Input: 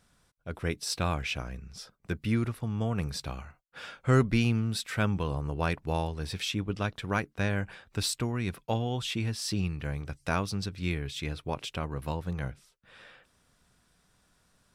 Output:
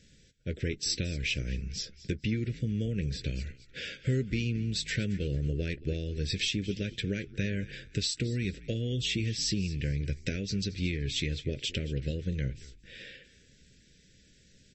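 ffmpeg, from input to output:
-filter_complex "[0:a]acompressor=threshold=-36dB:ratio=6,asuperstop=centerf=960:order=8:qfactor=0.75,asplit=4[a][b][c][d];[b]adelay=224,afreqshift=-67,volume=-18dB[e];[c]adelay=448,afreqshift=-134,volume=-28.2dB[f];[d]adelay=672,afreqshift=-201,volume=-38.3dB[g];[a][e][f][g]amix=inputs=4:normalize=0,asettb=1/sr,asplit=3[h][i][j];[h]atrim=end=2.874[k];[i]atrim=start=2.87:end=4.12,asetpts=PTS-STARTPTS,afade=t=in:d=0.004:c=qsin,afade=t=out:st=1.246:d=0.004:c=qsin,acrossover=split=2900[l][m];[m]acompressor=threshold=-50dB:ratio=4:attack=1:release=60[n];[l][n]amix=inputs=2:normalize=0[o];[j]atrim=start=4.116[p];[k][o]acrossfade=d=0.004:c1=hsin:c2=qsin[q];[q][p]acrossfade=d=0.004:c1=qsin:c2=hsin,asplit=2[r][s];[s]adelay=15,volume=-13.5dB[t];[r][t]amix=inputs=2:normalize=0,volume=8.5dB" -ar 32000 -c:a libmp3lame -b:a 32k

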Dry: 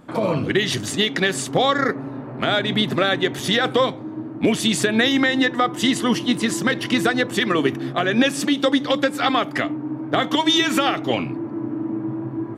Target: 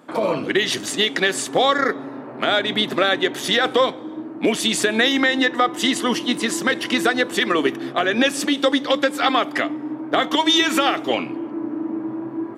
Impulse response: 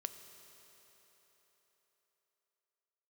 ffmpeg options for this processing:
-filter_complex "[0:a]highpass=280,asplit=2[a][b];[1:a]atrim=start_sample=2205,afade=t=out:st=0.34:d=0.01,atrim=end_sample=15435,asetrate=35721,aresample=44100[c];[b][c]afir=irnorm=-1:irlink=0,volume=-12.5dB[d];[a][d]amix=inputs=2:normalize=0"

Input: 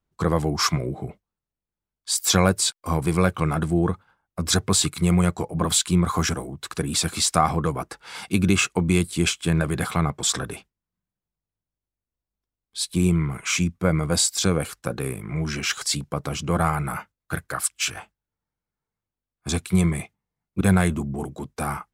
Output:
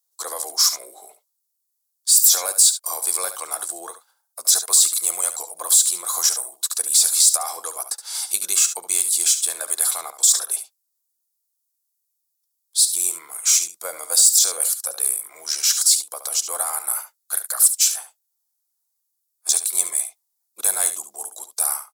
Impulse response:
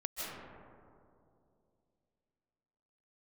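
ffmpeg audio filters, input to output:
-filter_complex "[0:a]highpass=f=600:w=0.5412,highpass=f=600:w=1.3066,aemphasis=mode=production:type=cd,acrossover=split=1000[a][b];[a]acontrast=34[c];[c][b]amix=inputs=2:normalize=0,alimiter=limit=-11.5dB:level=0:latency=1:release=15,aexciter=amount=4.3:drive=9:freq=3.8k,asplit=2[d][e];[e]aecho=0:1:71:0.282[f];[d][f]amix=inputs=2:normalize=0,volume=-8dB"

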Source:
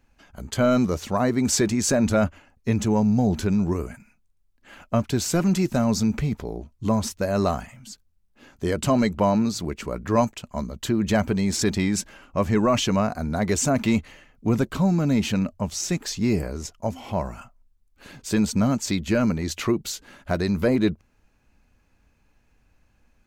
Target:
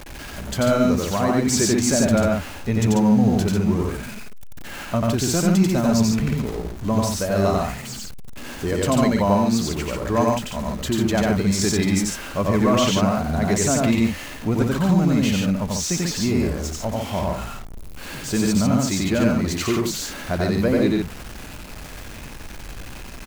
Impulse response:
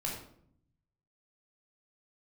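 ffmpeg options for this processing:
-af "aeval=exprs='val(0)+0.5*0.0266*sgn(val(0))':c=same,aecho=1:1:90.38|142.9:0.891|0.631,volume=-1.5dB"

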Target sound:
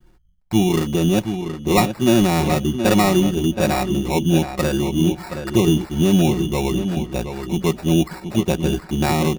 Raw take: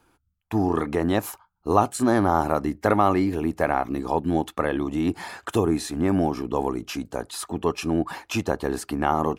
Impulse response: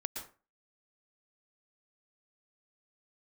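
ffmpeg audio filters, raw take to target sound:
-filter_complex "[0:a]aemphasis=mode=reproduction:type=riaa,aecho=1:1:5.5:0.91,adynamicequalizer=threshold=0.0398:dfrequency=830:dqfactor=0.99:tfrequency=830:tqfactor=0.99:attack=5:release=100:ratio=0.375:range=2:mode=cutabove:tftype=bell,acrusher=samples=14:mix=1:aa=0.000001,asplit=2[a][b];[b]adelay=723,lowpass=f=3.6k:p=1,volume=-8dB,asplit=2[c][d];[d]adelay=723,lowpass=f=3.6k:p=1,volume=0.17,asplit=2[e][f];[f]adelay=723,lowpass=f=3.6k:p=1,volume=0.17[g];[c][e][g]amix=inputs=3:normalize=0[h];[a][h]amix=inputs=2:normalize=0,volume=-2dB"

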